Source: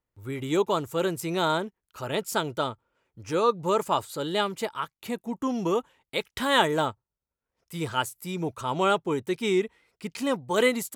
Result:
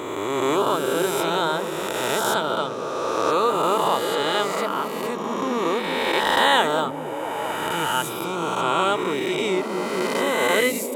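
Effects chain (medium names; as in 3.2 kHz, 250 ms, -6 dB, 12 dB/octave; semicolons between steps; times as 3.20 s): reverse spectral sustain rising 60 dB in 2.60 s; bass shelf 170 Hz -10.5 dB; repeats whose band climbs or falls 226 ms, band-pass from 180 Hz, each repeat 0.7 oct, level -1 dB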